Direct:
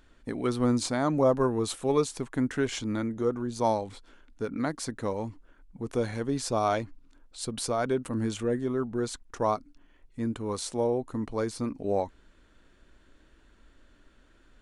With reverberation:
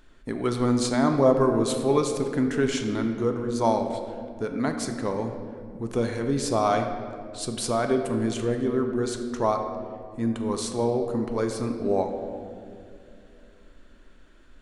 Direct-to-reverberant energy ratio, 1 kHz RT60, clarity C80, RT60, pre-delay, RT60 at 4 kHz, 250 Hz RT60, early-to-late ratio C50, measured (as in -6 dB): 4.5 dB, 2.0 s, 7.5 dB, 2.6 s, 3 ms, 1.3 s, 3.4 s, 6.5 dB